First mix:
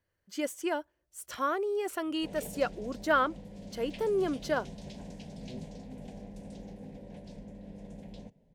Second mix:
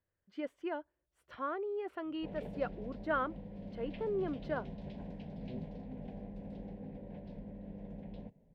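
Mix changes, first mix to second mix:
speech -5.5 dB; master: add air absorption 410 m

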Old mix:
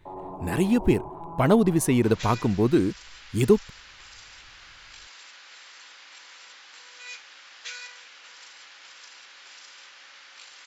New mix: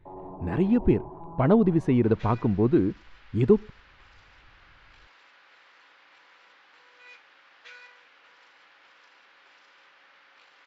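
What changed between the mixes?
speech: send on; first sound: add air absorption 420 m; master: add tape spacing loss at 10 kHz 37 dB

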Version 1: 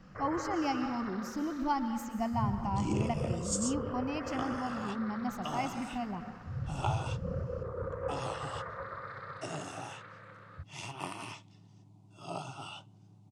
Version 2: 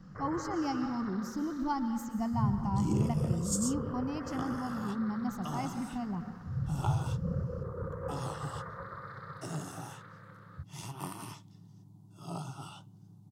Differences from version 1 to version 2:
second sound: remove LPF 8900 Hz 24 dB/oct; master: add fifteen-band EQ 160 Hz +7 dB, 630 Hz -6 dB, 2500 Hz -11 dB

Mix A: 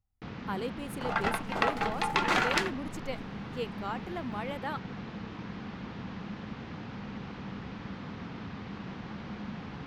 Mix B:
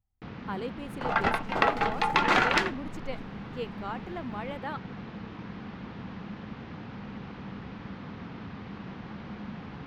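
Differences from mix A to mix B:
second sound +4.5 dB; master: add bell 11000 Hz -9.5 dB 1.6 oct

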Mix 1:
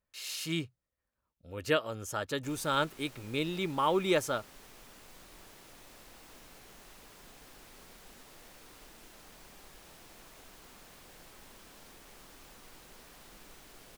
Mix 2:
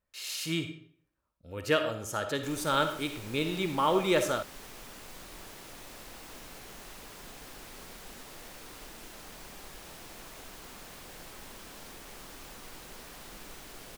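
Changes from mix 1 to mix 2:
background +7.0 dB; reverb: on, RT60 0.55 s

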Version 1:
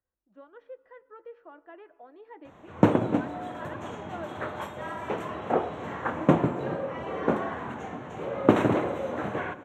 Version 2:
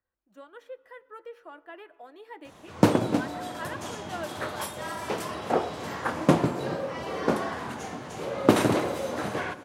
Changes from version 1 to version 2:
speech: remove tape spacing loss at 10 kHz 39 dB; background: remove running mean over 9 samples

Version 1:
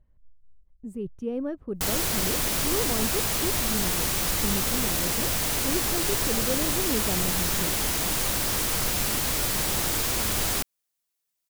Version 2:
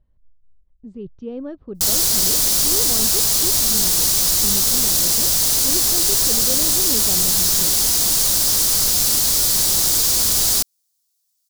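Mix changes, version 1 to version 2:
speech: add LPF 3700 Hz 24 dB/oct; master: add resonant high shelf 3400 Hz +10.5 dB, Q 1.5

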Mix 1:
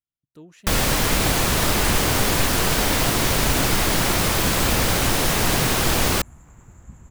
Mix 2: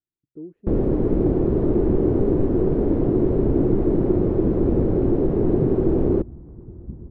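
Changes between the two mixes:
second sound +6.5 dB; master: add synth low-pass 370 Hz, resonance Q 3.8

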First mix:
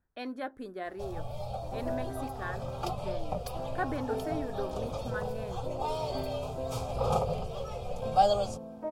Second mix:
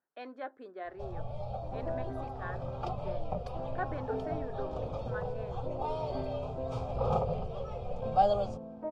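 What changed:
speech: add HPF 430 Hz 12 dB/oct; master: add tape spacing loss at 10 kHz 25 dB

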